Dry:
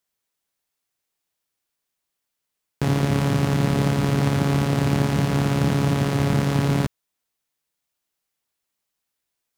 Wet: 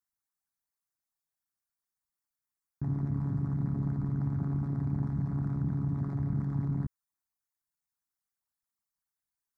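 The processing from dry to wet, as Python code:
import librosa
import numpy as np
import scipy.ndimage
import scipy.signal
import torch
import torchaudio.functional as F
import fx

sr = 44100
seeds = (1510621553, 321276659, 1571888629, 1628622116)

y = fx.envelope_sharpen(x, sr, power=2.0)
y = fx.fixed_phaser(y, sr, hz=1200.0, stages=4)
y = F.gain(torch.from_numpy(y), -9.0).numpy()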